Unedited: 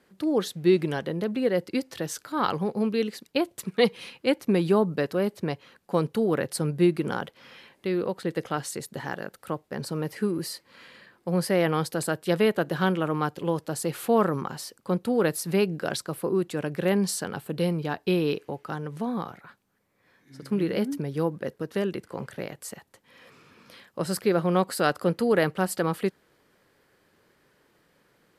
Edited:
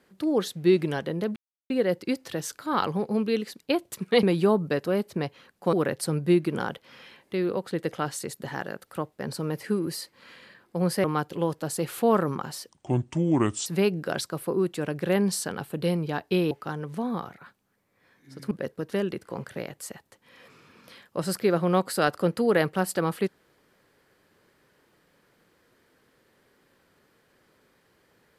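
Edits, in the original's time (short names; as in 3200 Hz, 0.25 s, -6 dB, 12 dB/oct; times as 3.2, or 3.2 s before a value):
1.36 insert silence 0.34 s
3.89–4.5 cut
6–6.25 cut
11.56–13.1 cut
14.75–15.42 speed 69%
18.27–18.54 cut
20.54–21.33 cut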